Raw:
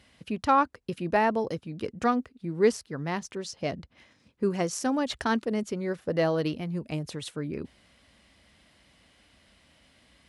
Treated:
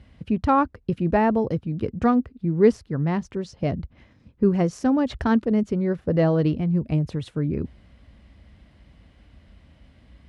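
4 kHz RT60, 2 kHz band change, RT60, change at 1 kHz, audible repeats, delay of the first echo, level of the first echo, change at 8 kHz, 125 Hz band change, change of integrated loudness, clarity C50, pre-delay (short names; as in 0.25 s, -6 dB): none, -0.5 dB, none, +1.5 dB, none, none, none, n/a, +11.0 dB, +6.0 dB, none, none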